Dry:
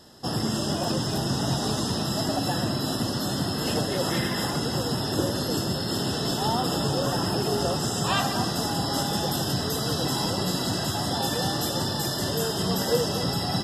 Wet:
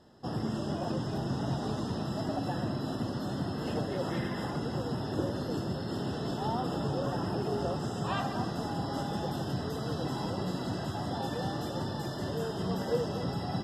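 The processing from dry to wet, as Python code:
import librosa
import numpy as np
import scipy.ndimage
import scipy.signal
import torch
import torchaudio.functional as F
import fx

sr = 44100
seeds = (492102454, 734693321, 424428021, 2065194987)

y = fx.lowpass(x, sr, hz=1400.0, slope=6)
y = y * librosa.db_to_amplitude(-5.5)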